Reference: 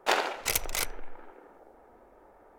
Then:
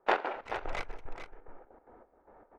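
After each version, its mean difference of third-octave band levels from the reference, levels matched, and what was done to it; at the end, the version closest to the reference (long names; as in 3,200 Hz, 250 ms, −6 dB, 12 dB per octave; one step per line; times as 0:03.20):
6.5 dB: low-pass filter 1,900 Hz 12 dB per octave
gate pattern ".x.xx...xx" 185 BPM −12 dB
on a send: single-tap delay 430 ms −9.5 dB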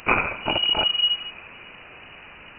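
10.5 dB: flat-topped bell 940 Hz −15 dB 1.1 octaves
in parallel at −8.5 dB: bit-depth reduction 6 bits, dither triangular
on the sum: voice inversion scrambler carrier 2,900 Hz
level +7 dB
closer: first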